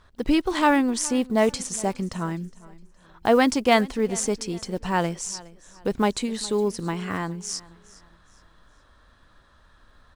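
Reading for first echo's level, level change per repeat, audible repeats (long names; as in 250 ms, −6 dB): −21.0 dB, −9.0 dB, 2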